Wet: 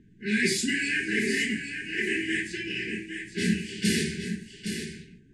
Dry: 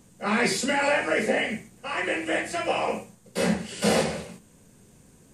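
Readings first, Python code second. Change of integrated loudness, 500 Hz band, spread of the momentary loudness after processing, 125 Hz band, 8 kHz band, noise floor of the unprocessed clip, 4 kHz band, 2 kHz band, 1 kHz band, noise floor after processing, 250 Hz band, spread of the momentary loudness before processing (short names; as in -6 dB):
-2.5 dB, -9.0 dB, 10 LU, +0.5 dB, 0.0 dB, -56 dBFS, +0.5 dB, +0.5 dB, under -40 dB, -55 dBFS, +0.5 dB, 12 LU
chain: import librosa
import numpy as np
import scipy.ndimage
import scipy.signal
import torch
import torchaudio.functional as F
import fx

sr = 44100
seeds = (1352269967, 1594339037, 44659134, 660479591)

y = fx.brickwall_bandstop(x, sr, low_hz=440.0, high_hz=1500.0)
y = fx.env_lowpass(y, sr, base_hz=1600.0, full_db=-23.0)
y = y + 10.0 ** (-8.0 / 20.0) * np.pad(y, (int(815 * sr / 1000.0), 0))[:len(y)]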